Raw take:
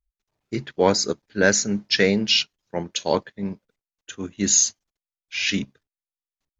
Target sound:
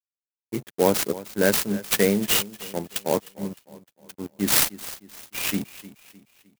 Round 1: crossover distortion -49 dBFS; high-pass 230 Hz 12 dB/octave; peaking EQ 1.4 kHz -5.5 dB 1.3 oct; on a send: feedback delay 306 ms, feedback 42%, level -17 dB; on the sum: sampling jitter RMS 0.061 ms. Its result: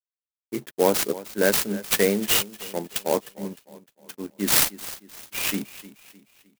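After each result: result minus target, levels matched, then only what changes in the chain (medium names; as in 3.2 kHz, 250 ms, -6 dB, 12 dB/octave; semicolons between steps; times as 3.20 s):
crossover distortion: distortion -10 dB; 125 Hz band -4.0 dB
change: crossover distortion -38 dBFS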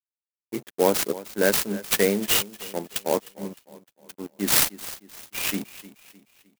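125 Hz band -4.0 dB
change: high-pass 110 Hz 12 dB/octave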